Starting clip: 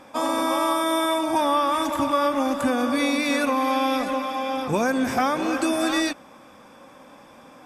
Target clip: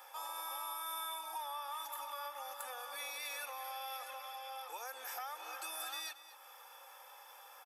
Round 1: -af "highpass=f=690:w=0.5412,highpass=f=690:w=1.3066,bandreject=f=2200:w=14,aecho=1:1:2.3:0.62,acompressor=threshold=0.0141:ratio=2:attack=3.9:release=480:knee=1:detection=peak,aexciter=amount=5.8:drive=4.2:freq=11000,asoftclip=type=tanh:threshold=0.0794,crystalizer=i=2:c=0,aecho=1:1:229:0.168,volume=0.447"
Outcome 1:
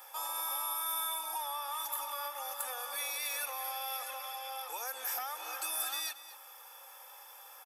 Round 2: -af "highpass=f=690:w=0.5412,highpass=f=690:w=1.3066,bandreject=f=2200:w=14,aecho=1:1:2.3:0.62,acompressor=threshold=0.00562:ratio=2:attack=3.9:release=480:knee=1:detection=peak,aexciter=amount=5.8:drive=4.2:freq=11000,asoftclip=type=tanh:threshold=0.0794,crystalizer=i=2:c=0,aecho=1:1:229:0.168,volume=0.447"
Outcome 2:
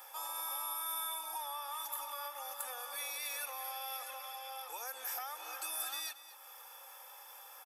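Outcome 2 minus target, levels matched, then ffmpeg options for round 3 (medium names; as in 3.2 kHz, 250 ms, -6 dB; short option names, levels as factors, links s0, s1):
8 kHz band +3.0 dB
-af "highpass=f=690:w=0.5412,highpass=f=690:w=1.3066,highshelf=f=6400:g=-9,bandreject=f=2200:w=14,aecho=1:1:2.3:0.62,acompressor=threshold=0.00562:ratio=2:attack=3.9:release=480:knee=1:detection=peak,aexciter=amount=5.8:drive=4.2:freq=11000,asoftclip=type=tanh:threshold=0.0794,crystalizer=i=2:c=0,aecho=1:1:229:0.168,volume=0.447"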